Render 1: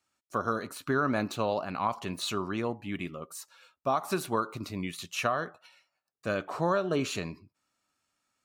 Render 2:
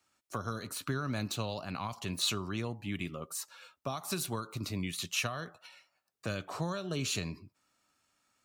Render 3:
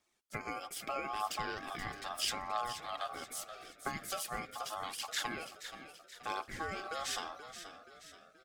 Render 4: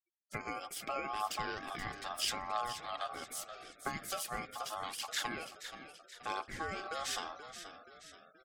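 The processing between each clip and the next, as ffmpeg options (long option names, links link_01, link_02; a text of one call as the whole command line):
ffmpeg -i in.wav -filter_complex "[0:a]acrossover=split=150|3000[link_01][link_02][link_03];[link_02]acompressor=threshold=-43dB:ratio=4[link_04];[link_01][link_04][link_03]amix=inputs=3:normalize=0,volume=4dB" out.wav
ffmpeg -i in.wav -filter_complex "[0:a]aphaser=in_gain=1:out_gain=1:delay=5:decay=0.53:speed=0.78:type=triangular,asplit=6[link_01][link_02][link_03][link_04][link_05][link_06];[link_02]adelay=478,afreqshift=53,volume=-11dB[link_07];[link_03]adelay=956,afreqshift=106,volume=-17.4dB[link_08];[link_04]adelay=1434,afreqshift=159,volume=-23.8dB[link_09];[link_05]adelay=1912,afreqshift=212,volume=-30.1dB[link_10];[link_06]adelay=2390,afreqshift=265,volume=-36.5dB[link_11];[link_01][link_07][link_08][link_09][link_10][link_11]amix=inputs=6:normalize=0,aeval=exprs='val(0)*sin(2*PI*960*n/s)':channel_layout=same,volume=-2dB" out.wav
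ffmpeg -i in.wav -af "afftfilt=real='re*gte(hypot(re,im),0.000562)':imag='im*gte(hypot(re,im),0.000562)':win_size=1024:overlap=0.75" out.wav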